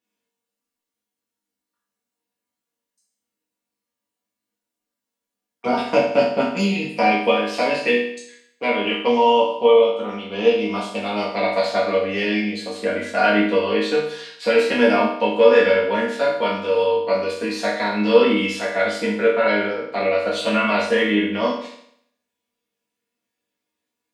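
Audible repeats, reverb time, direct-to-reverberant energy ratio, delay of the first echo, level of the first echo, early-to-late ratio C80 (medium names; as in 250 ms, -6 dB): no echo, 0.65 s, -7.5 dB, no echo, no echo, 7.0 dB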